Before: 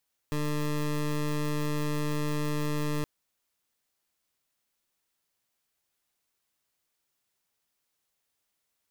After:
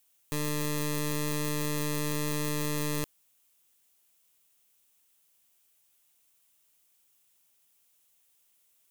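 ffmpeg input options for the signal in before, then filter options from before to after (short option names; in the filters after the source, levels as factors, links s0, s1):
-f lavfi -i "aevalsrc='0.0355*(2*lt(mod(149*t,1),0.2)-1)':d=2.72:s=44100"
-filter_complex "[0:a]aexciter=amount=2:drive=3.5:freq=2500,asplit=2[s0][s1];[s1]aeval=exprs='(mod(29.9*val(0)+1,2)-1)/29.9':c=same,volume=0.316[s2];[s0][s2]amix=inputs=2:normalize=0"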